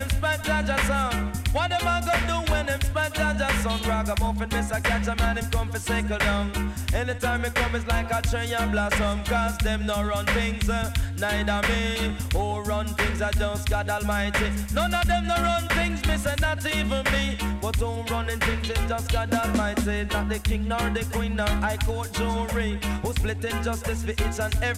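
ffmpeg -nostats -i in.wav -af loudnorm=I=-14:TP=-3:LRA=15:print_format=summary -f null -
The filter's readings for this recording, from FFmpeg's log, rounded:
Input Integrated:    -25.6 LUFS
Input True Peak:     -10.0 dBTP
Input LRA:             2.6 LU
Input Threshold:     -35.6 LUFS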